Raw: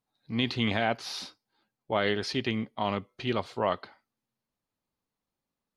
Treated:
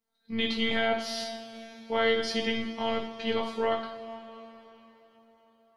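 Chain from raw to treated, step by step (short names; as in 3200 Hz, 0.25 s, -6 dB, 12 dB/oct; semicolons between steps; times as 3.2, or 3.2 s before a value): robotiser 226 Hz; two-slope reverb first 0.47 s, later 4.3 s, from -18 dB, DRR -0.5 dB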